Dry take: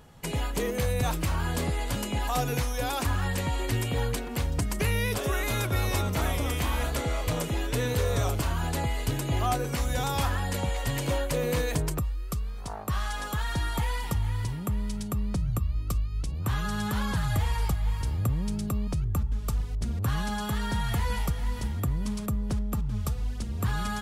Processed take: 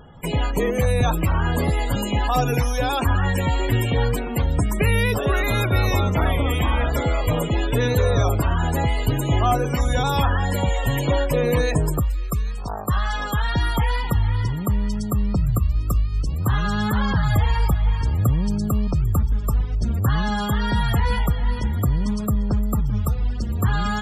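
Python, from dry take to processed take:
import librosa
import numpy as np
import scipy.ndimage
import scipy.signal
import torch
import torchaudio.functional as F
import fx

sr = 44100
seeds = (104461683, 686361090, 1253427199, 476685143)

y = fx.echo_wet_highpass(x, sr, ms=797, feedback_pct=43, hz=1900.0, wet_db=-16)
y = fx.wow_flutter(y, sr, seeds[0], rate_hz=2.1, depth_cents=21.0)
y = fx.spec_topn(y, sr, count=64)
y = y * librosa.db_to_amplitude(8.0)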